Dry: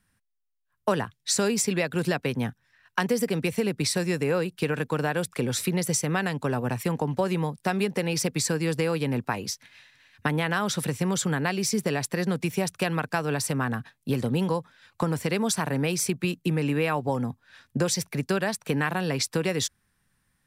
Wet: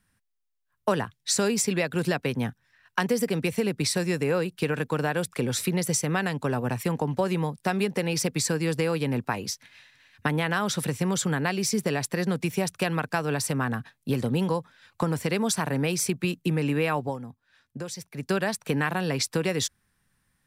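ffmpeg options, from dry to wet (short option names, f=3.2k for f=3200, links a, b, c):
-filter_complex "[0:a]asplit=3[a][b][c];[a]atrim=end=17.19,asetpts=PTS-STARTPTS,afade=t=out:st=17.01:d=0.18:silence=0.298538[d];[b]atrim=start=17.19:end=18.14,asetpts=PTS-STARTPTS,volume=-10.5dB[e];[c]atrim=start=18.14,asetpts=PTS-STARTPTS,afade=t=in:d=0.18:silence=0.298538[f];[d][e][f]concat=n=3:v=0:a=1"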